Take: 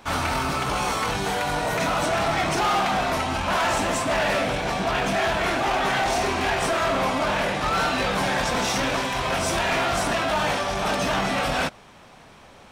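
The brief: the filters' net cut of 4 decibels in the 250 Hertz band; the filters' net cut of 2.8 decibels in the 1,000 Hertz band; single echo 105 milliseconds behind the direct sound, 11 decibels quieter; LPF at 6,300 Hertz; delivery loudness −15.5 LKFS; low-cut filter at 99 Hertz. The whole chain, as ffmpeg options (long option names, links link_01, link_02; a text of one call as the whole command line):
ffmpeg -i in.wav -af "highpass=99,lowpass=6300,equalizer=frequency=250:width_type=o:gain=-5,equalizer=frequency=1000:width_type=o:gain=-3.5,aecho=1:1:105:0.282,volume=9.5dB" out.wav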